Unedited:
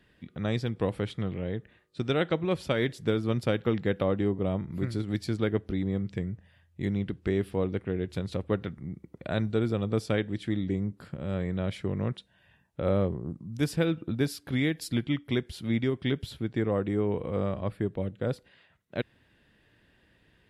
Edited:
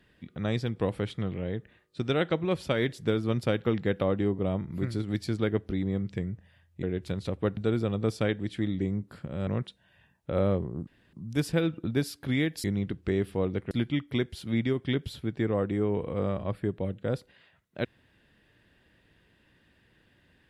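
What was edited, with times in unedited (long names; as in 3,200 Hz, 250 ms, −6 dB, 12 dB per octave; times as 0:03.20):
0:06.83–0:07.90: move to 0:14.88
0:08.64–0:09.46: remove
0:11.36–0:11.97: remove
0:13.37: splice in room tone 0.26 s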